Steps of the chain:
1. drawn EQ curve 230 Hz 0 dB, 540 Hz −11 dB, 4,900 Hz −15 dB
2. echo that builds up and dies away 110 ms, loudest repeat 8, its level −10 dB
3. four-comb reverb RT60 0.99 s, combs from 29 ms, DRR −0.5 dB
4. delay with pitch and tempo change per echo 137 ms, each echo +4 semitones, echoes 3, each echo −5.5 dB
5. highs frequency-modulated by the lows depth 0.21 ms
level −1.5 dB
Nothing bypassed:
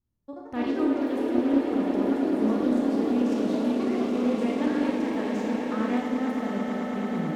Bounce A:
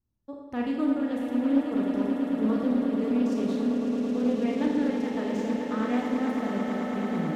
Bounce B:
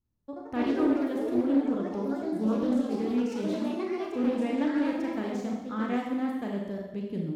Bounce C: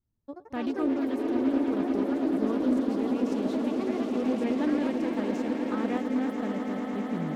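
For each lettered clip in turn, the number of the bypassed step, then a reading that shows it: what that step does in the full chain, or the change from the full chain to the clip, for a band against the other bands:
4, 125 Hz band +2.0 dB
2, change in momentary loudness spread +3 LU
3, change in crest factor −2.0 dB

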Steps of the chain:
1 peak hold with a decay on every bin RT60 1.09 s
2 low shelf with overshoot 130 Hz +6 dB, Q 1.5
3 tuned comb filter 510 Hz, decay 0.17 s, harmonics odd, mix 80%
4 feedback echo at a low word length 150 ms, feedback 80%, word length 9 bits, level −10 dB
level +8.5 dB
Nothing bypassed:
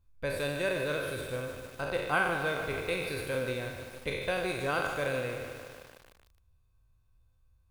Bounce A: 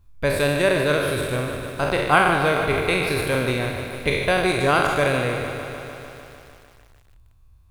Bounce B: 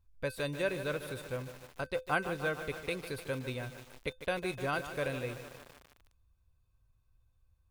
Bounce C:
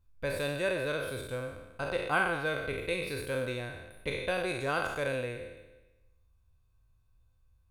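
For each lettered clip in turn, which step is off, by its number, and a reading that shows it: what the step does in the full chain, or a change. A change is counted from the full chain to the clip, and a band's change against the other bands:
3, 2 kHz band −2.5 dB
1, 125 Hz band +2.5 dB
4, change in momentary loudness spread −1 LU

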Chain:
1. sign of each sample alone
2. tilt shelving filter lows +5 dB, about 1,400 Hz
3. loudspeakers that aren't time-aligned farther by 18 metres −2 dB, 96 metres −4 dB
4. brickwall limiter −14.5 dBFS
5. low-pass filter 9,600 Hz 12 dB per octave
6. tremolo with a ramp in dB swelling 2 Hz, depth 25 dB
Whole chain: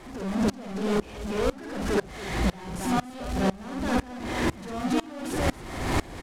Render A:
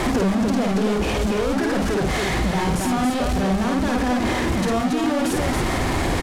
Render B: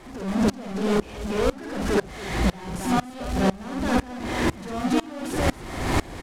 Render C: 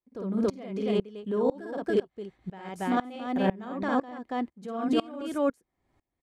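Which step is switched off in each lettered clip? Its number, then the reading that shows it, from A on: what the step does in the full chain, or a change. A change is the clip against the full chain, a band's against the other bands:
6, change in momentary loudness spread −4 LU
4, average gain reduction 2.5 dB
1, change in crest factor +2.0 dB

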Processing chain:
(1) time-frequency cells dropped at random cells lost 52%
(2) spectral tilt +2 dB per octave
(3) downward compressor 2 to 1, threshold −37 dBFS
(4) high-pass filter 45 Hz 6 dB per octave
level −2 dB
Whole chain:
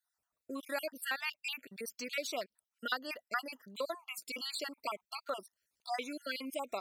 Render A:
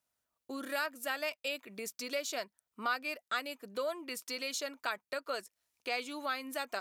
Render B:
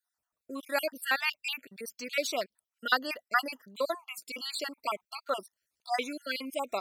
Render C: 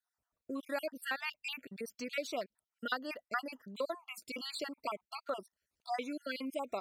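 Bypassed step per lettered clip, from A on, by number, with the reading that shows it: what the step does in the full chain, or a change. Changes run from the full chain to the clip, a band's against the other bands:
1, change in crest factor −4.0 dB
3, average gain reduction 4.5 dB
2, 8 kHz band −5.5 dB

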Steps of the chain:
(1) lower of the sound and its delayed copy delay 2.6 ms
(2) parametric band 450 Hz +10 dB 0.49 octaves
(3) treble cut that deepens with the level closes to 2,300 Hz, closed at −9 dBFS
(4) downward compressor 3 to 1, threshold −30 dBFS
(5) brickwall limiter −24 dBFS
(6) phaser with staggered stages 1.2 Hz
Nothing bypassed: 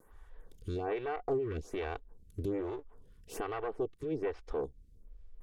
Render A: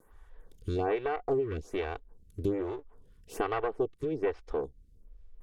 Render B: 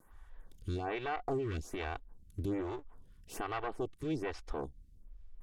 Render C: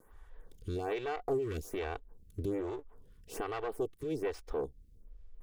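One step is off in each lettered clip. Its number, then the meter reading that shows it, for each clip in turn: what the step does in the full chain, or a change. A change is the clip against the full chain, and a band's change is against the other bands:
5, change in momentary loudness spread +2 LU
2, 500 Hz band −6.0 dB
3, 4 kHz band +3.5 dB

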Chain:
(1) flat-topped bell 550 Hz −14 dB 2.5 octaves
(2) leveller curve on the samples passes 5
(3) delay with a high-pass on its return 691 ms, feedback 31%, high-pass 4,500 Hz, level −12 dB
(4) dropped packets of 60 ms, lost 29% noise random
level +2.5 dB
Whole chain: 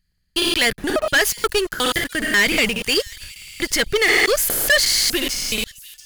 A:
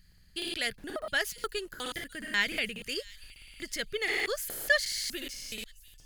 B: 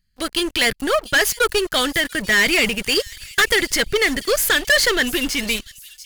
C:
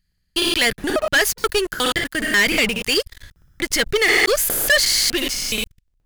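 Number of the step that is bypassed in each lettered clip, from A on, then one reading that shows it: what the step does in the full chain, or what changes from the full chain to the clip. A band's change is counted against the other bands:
2, change in crest factor +6.0 dB
4, 8 kHz band −2.5 dB
3, change in momentary loudness spread −2 LU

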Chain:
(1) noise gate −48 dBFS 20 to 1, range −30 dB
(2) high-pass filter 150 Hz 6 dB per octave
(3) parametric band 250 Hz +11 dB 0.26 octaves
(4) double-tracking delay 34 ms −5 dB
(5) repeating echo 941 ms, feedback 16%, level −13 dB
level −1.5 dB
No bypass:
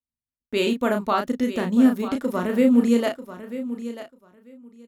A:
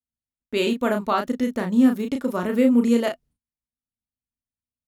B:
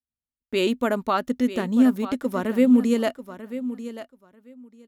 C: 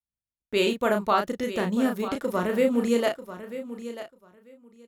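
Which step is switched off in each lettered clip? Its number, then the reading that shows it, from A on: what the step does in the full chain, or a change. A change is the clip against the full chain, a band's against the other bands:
5, change in momentary loudness spread −7 LU
4, change in momentary loudness spread +2 LU
3, 250 Hz band −7.5 dB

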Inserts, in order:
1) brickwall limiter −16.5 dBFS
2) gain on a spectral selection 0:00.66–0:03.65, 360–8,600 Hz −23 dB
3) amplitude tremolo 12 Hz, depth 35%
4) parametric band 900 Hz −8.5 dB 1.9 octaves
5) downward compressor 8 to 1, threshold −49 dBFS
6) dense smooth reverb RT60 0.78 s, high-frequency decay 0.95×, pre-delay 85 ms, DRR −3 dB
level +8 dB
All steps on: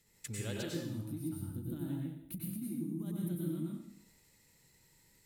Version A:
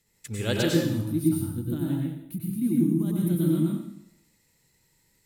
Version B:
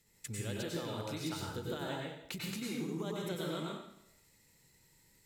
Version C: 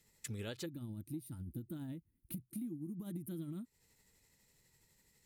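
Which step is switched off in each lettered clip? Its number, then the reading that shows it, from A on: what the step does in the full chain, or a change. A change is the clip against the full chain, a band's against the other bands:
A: 5, average gain reduction 12.0 dB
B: 2, 1 kHz band +10.5 dB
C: 6, change in crest factor +2.0 dB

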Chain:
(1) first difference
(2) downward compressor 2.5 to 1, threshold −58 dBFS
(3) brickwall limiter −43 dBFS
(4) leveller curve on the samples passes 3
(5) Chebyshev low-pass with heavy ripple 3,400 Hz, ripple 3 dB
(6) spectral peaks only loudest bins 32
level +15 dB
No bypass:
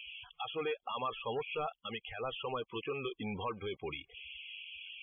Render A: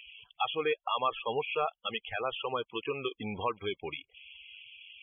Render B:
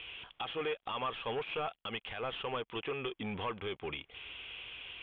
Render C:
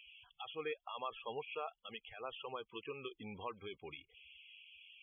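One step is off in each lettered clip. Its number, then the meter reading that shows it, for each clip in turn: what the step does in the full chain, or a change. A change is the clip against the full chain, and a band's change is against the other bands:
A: 3, change in crest factor +4.0 dB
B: 6, 2 kHz band +1.5 dB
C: 4, change in crest factor +4.0 dB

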